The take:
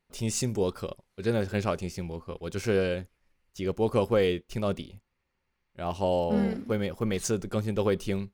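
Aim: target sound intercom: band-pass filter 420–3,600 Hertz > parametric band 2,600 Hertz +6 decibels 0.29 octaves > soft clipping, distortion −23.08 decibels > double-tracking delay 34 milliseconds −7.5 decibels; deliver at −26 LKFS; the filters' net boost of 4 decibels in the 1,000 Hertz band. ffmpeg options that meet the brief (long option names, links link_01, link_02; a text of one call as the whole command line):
ffmpeg -i in.wav -filter_complex "[0:a]highpass=420,lowpass=3600,equalizer=frequency=1000:width_type=o:gain=5.5,equalizer=frequency=2600:width_type=o:width=0.29:gain=6,asoftclip=threshold=-14dB,asplit=2[link_01][link_02];[link_02]adelay=34,volume=-7.5dB[link_03];[link_01][link_03]amix=inputs=2:normalize=0,volume=5.5dB" out.wav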